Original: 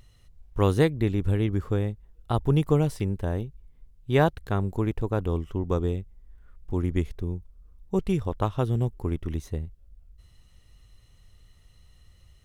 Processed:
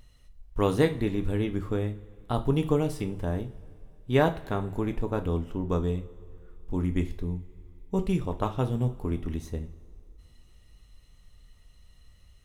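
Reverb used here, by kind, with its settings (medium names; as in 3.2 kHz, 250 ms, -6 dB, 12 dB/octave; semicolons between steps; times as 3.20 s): two-slope reverb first 0.32 s, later 2.8 s, from -22 dB, DRR 5.5 dB; trim -2 dB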